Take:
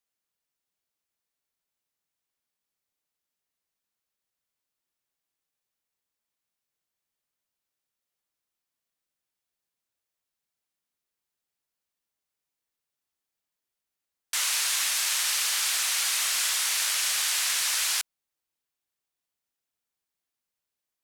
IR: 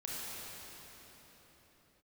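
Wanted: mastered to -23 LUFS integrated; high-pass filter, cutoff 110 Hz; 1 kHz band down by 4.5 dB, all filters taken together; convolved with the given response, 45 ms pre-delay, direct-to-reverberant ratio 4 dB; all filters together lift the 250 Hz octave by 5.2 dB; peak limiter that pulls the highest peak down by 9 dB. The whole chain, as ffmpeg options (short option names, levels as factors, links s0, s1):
-filter_complex "[0:a]highpass=110,equalizer=f=250:t=o:g=8,equalizer=f=1000:t=o:g=-6.5,alimiter=limit=0.0708:level=0:latency=1,asplit=2[s0][s1];[1:a]atrim=start_sample=2205,adelay=45[s2];[s1][s2]afir=irnorm=-1:irlink=0,volume=0.501[s3];[s0][s3]amix=inputs=2:normalize=0,volume=2"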